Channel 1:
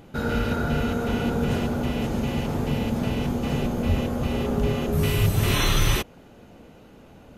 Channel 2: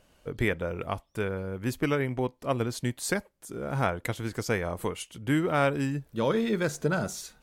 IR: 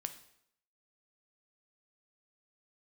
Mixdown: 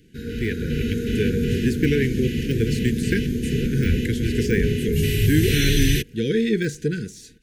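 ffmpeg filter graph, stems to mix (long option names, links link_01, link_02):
-filter_complex "[0:a]volume=-5.5dB[link_01];[1:a]lowpass=11000,deesser=0.95,volume=-0.5dB[link_02];[link_01][link_02]amix=inputs=2:normalize=0,dynaudnorm=framelen=120:gausssize=11:maxgain=8dB,asuperstop=centerf=860:order=20:qfactor=0.79"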